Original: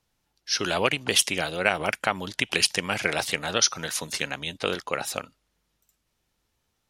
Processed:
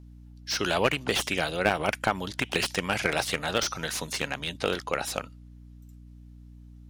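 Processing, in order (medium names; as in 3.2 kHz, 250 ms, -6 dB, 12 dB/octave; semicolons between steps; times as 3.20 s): hum 60 Hz, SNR 19 dB; slew-rate limiter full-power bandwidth 240 Hz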